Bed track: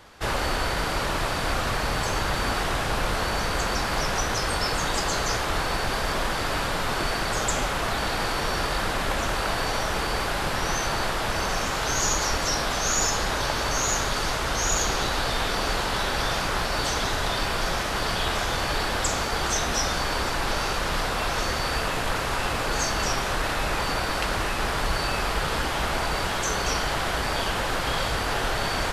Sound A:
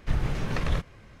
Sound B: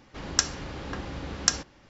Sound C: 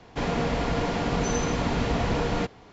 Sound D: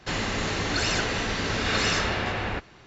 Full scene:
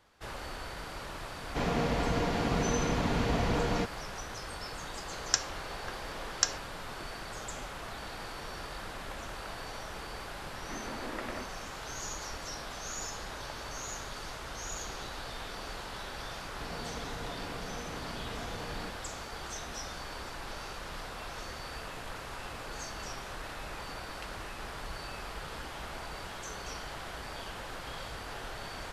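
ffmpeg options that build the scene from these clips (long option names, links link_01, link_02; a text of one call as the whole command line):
ffmpeg -i bed.wav -i cue0.wav -i cue1.wav -i cue2.wav -filter_complex "[3:a]asplit=2[link_01][link_02];[0:a]volume=-15.5dB[link_03];[2:a]highpass=frequency=390:width=0.5412,highpass=frequency=390:width=1.3066[link_04];[1:a]highpass=frequency=180:width_type=q:width=0.5412,highpass=frequency=180:width_type=q:width=1.307,lowpass=frequency=2300:width_type=q:width=0.5176,lowpass=frequency=2300:width_type=q:width=0.7071,lowpass=frequency=2300:width_type=q:width=1.932,afreqshift=81[link_05];[link_02]acompressor=threshold=-27dB:ratio=6:attack=3.2:release=140:knee=1:detection=peak[link_06];[link_01]atrim=end=2.72,asetpts=PTS-STARTPTS,volume=-4dB,afade=type=in:duration=0.004:curve=hsin,afade=type=out:start_time=2.716:duration=0.004:curve=hsin,adelay=1390[link_07];[link_04]atrim=end=1.89,asetpts=PTS-STARTPTS,volume=-4.5dB,afade=type=in:duration=0.004:curve=hsin,afade=type=out:start_time=1.886:duration=0.004:curve=hsin,adelay=4950[link_08];[link_05]atrim=end=1.2,asetpts=PTS-STARTPTS,volume=-6.5dB,afade=type=in:duration=0.004:curve=hsin,afade=type=out:start_time=1.196:duration=0.004:curve=hsin,adelay=10620[link_09];[link_06]atrim=end=2.72,asetpts=PTS-STARTPTS,volume=-11.5dB,afade=type=in:duration=0.004:curve=hsin,afade=type=out:start_time=2.716:duration=0.004:curve=hsin,adelay=16440[link_10];[link_03][link_07][link_08][link_09][link_10]amix=inputs=5:normalize=0" out.wav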